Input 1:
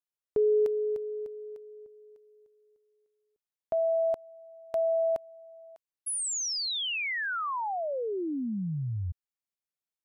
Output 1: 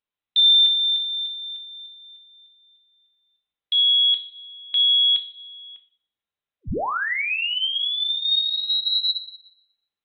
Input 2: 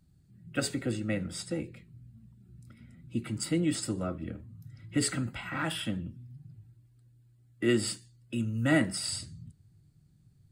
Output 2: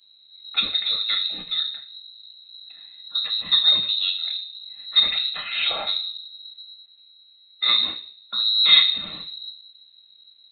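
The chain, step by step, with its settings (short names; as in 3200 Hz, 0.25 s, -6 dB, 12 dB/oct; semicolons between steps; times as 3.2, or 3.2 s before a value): FDN reverb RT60 0.54 s, low-frequency decay 1.5×, high-frequency decay 0.65×, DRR 5 dB; inverted band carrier 4000 Hz; gain +6 dB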